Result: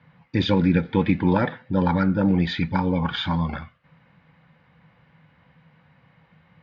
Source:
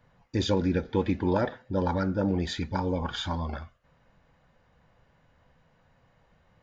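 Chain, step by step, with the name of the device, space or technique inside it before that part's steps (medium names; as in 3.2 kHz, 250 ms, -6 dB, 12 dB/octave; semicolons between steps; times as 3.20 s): guitar cabinet (cabinet simulation 100–4100 Hz, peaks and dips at 160 Hz +9 dB, 400 Hz -7 dB, 640 Hz -7 dB, 2.2 kHz +6 dB); trim +6.5 dB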